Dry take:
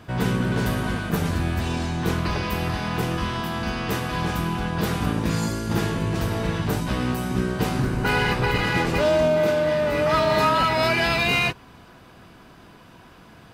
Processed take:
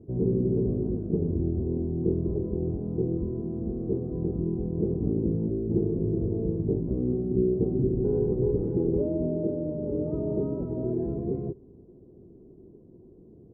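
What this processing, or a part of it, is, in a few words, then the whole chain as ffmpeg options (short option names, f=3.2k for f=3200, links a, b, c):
under water: -af "lowpass=f=430:w=0.5412,lowpass=f=430:w=1.3066,equalizer=f=390:t=o:w=0.51:g=12,volume=-4dB"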